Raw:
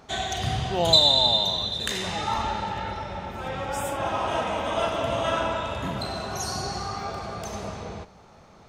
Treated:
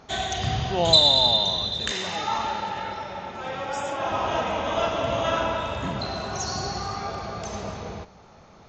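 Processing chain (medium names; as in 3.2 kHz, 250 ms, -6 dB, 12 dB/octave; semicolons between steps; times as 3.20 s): 1.91–4.09 s: high-pass 260 Hz 6 dB/octave; trim +1 dB; SBC 64 kbps 16 kHz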